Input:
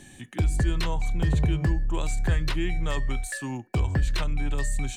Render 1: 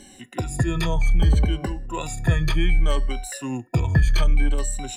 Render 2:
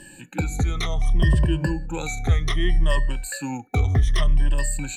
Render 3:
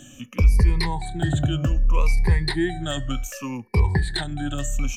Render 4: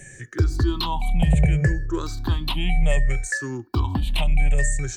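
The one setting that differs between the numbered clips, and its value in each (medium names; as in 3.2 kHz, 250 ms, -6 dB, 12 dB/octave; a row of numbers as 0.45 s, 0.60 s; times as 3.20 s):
drifting ripple filter, ripples per octave: 2.1, 1.3, 0.86, 0.52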